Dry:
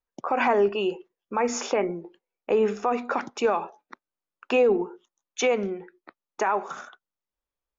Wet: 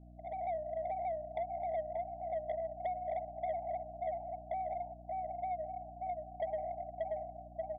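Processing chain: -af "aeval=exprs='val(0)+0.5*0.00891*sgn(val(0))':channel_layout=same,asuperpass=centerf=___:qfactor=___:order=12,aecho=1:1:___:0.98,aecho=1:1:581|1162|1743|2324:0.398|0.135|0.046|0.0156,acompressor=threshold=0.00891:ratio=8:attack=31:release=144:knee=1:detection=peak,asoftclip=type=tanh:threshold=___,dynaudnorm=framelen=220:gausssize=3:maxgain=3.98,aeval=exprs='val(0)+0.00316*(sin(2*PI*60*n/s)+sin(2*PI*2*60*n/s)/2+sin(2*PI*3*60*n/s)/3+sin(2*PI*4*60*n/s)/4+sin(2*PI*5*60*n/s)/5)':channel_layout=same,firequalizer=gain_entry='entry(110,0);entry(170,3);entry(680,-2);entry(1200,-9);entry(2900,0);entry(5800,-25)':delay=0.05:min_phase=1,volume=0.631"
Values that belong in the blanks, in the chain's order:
710, 3.8, 3.1, 0.0158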